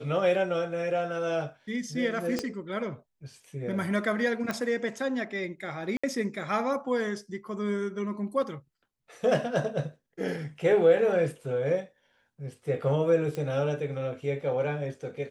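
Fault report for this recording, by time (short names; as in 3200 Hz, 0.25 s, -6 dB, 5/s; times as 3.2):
2.39 pop -15 dBFS
4.51 pop -17 dBFS
5.97–6.04 gap 65 ms
13.35 pop -22 dBFS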